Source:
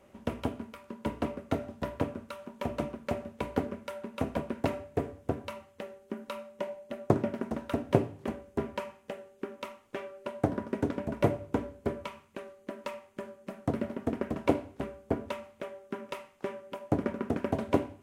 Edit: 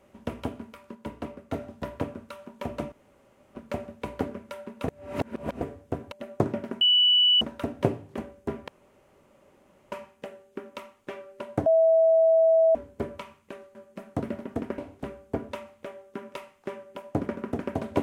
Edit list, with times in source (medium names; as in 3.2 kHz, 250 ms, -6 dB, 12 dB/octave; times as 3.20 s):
0.95–1.53 s: gain -4 dB
2.92 s: insert room tone 0.63 s
4.25–4.98 s: reverse
5.49–6.82 s: delete
7.51 s: add tone 2.96 kHz -16.5 dBFS 0.60 s
8.78 s: insert room tone 1.24 s
10.52–11.61 s: bleep 651 Hz -16 dBFS
12.61–13.26 s: delete
14.29–14.55 s: delete